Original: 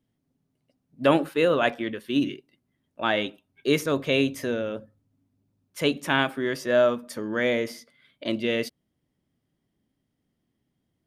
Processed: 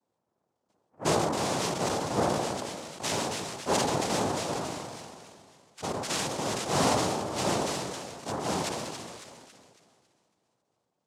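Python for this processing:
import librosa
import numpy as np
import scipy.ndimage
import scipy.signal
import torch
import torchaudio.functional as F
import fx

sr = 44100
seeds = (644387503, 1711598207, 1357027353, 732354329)

p1 = fx.schmitt(x, sr, flips_db=-33.0, at=(1.21, 1.99))
p2 = fx.level_steps(p1, sr, step_db=13, at=(4.5, 5.97))
p3 = p2 + fx.echo_split(p2, sr, split_hz=400.0, low_ms=114, high_ms=276, feedback_pct=52, wet_db=-12, dry=0)
p4 = fx.tube_stage(p3, sr, drive_db=18.0, bias=0.65)
p5 = fx.noise_vocoder(p4, sr, seeds[0], bands=2)
p6 = fx.sustainer(p5, sr, db_per_s=26.0)
y = p6 * 10.0 ** (-2.0 / 20.0)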